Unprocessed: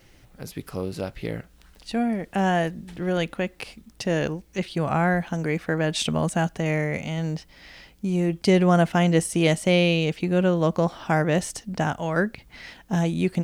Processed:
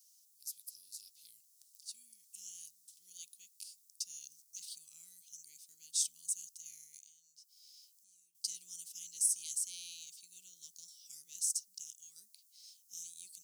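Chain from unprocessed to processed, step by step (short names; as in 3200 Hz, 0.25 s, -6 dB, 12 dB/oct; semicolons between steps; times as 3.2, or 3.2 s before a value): 4.3–4.76 sample leveller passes 1; 6.98–8.35 compressor 12:1, threshold -36 dBFS, peak gain reduction 17 dB; inverse Chebyshev high-pass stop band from 1800 Hz, stop band 60 dB; gain +1.5 dB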